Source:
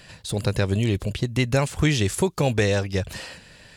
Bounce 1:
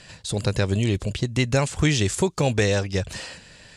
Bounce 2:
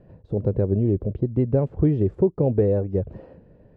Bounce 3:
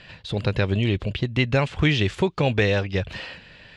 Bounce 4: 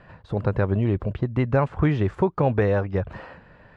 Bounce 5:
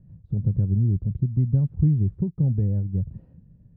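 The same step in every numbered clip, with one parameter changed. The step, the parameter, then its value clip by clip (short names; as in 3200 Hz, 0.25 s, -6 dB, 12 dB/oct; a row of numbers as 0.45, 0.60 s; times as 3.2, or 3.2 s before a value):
synth low-pass, frequency: 7900, 450, 3100, 1200, 160 Hz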